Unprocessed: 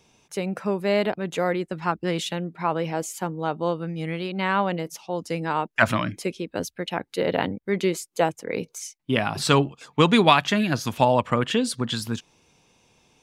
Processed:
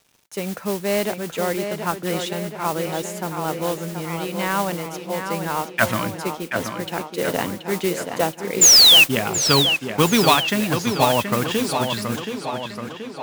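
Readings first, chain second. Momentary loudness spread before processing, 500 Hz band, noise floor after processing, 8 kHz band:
11 LU, +1.5 dB, -39 dBFS, +17.0 dB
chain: painted sound fall, 8.61–9.04 s, 2.5–7.4 kHz -10 dBFS; bit crusher 9-bit; modulation noise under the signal 11 dB; on a send: tape echo 727 ms, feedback 65%, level -6 dB, low-pass 4.2 kHz

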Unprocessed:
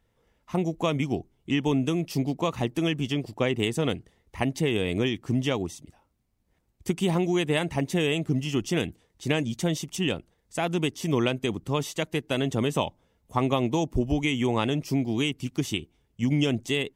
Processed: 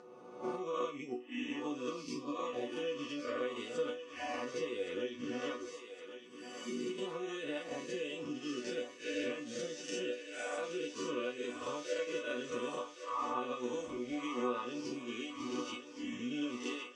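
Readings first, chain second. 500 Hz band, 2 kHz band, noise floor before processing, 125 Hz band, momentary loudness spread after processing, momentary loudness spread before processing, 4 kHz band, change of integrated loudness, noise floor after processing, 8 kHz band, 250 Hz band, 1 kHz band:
-9.0 dB, -10.5 dB, -71 dBFS, -29.0 dB, 5 LU, 6 LU, -12.5 dB, -12.0 dB, -53 dBFS, -10.5 dB, -14.0 dB, -8.5 dB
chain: reverse spectral sustain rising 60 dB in 1.13 s; spectral noise reduction 19 dB; peaking EQ 240 Hz -3 dB 1.1 oct; upward compressor, threshold -40 dBFS; transient shaper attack +4 dB, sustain -9 dB; compression 6:1, threshold -34 dBFS, peak gain reduction 17 dB; cabinet simulation 180–6800 Hz, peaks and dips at 490 Hz +8 dB, 780 Hz -8 dB, 1.2 kHz +6 dB, 2.1 kHz -5 dB, 3.3 kHz -5 dB; chord resonator B3 minor, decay 0.26 s; thinning echo 1115 ms, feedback 66%, high-pass 450 Hz, level -9 dB; trim +14.5 dB

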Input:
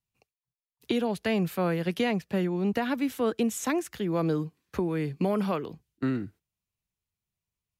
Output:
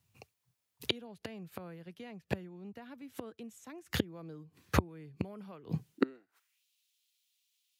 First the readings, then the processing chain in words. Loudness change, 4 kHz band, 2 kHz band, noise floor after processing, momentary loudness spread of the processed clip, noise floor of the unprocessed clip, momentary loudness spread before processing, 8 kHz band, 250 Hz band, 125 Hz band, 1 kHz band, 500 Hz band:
-10.5 dB, -2.0 dB, -7.5 dB, -84 dBFS, 16 LU, under -85 dBFS, 5 LU, -11.0 dB, -12.0 dB, -8.0 dB, -10.5 dB, -13.0 dB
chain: inverted gate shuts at -26 dBFS, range -33 dB; high-pass sweep 89 Hz -> 3.4 kHz, 5.71–6.65 s; trim +11.5 dB

